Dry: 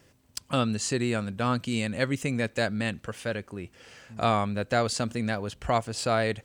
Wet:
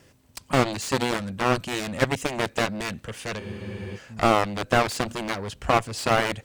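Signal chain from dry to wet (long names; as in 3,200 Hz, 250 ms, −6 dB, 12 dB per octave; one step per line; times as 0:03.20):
harmonic generator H 7 −12 dB, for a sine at −11.5 dBFS
frozen spectrum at 0:03.42, 0.55 s
slew-rate limiting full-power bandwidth 120 Hz
level +6.5 dB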